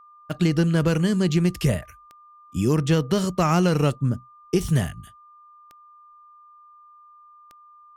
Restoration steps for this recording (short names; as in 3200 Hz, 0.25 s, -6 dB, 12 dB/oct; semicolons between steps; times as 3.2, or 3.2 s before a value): de-click; notch 1200 Hz, Q 30